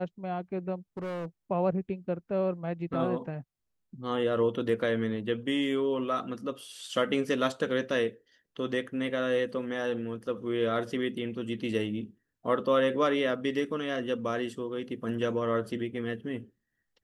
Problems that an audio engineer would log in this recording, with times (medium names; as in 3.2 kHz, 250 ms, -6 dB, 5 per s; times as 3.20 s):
0.97–1.26 s: clipped -32.5 dBFS